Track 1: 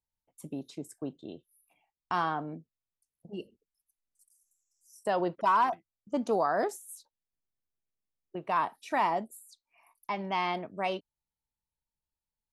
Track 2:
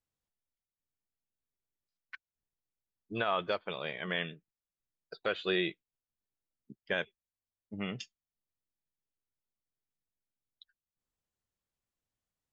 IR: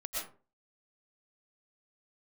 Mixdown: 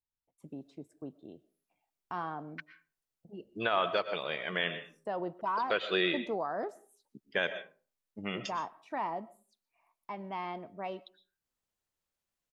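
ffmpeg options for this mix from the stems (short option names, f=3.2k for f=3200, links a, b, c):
-filter_complex "[0:a]lowpass=f=1.5k:p=1,volume=-6.5dB,asplit=2[a][b];[b]volume=-22.5dB[c];[1:a]lowshelf=f=160:g=-10.5,adelay=450,volume=1dB,asplit=2[d][e];[e]volume=-10dB[f];[2:a]atrim=start_sample=2205[g];[c][f]amix=inputs=2:normalize=0[h];[h][g]afir=irnorm=-1:irlink=0[i];[a][d][i]amix=inputs=3:normalize=0"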